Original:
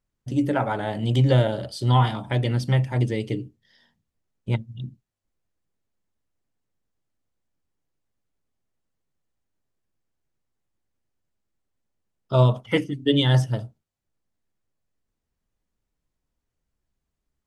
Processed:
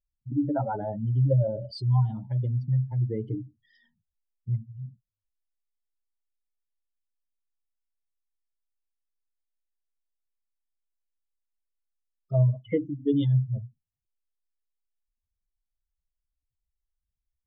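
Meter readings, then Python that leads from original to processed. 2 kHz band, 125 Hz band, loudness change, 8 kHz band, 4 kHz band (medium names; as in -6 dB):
under -15 dB, -3.0 dB, -4.5 dB, no reading, under -15 dB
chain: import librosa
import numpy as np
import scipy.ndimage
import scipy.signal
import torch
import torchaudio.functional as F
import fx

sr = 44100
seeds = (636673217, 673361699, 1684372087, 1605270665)

y = fx.spec_expand(x, sr, power=2.6)
y = y * 10.0 ** (-3.5 / 20.0)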